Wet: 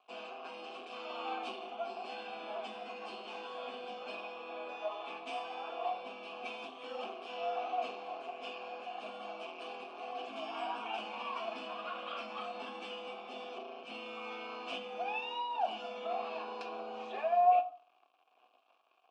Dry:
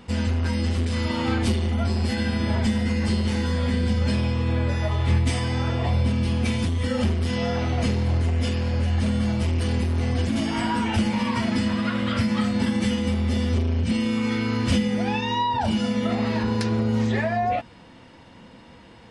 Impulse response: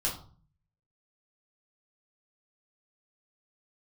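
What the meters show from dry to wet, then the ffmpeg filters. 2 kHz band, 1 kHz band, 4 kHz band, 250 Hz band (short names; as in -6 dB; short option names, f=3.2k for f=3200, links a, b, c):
-13.5 dB, -5.5 dB, -13.5 dB, -30.5 dB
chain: -filter_complex "[0:a]aeval=exprs='sgn(val(0))*max(abs(val(0))-0.00596,0)':c=same,asplit=3[a][b][c];[a]bandpass=f=730:t=q:w=8,volume=0dB[d];[b]bandpass=f=1.09k:t=q:w=8,volume=-6dB[e];[c]bandpass=f=2.44k:t=q:w=8,volume=-9dB[f];[d][e][f]amix=inputs=3:normalize=0,highpass=f=290:w=0.5412,highpass=f=290:w=1.3066,equalizer=f=570:t=q:w=4:g=-7,equalizer=f=2k:t=q:w=4:g=-4,equalizer=f=3k:t=q:w=4:g=4,lowpass=f=9.4k:w=0.5412,lowpass=f=9.4k:w=1.3066,asplit=2[g][h];[1:a]atrim=start_sample=2205[i];[h][i]afir=irnorm=-1:irlink=0,volume=-12dB[j];[g][j]amix=inputs=2:normalize=0,volume=1dB"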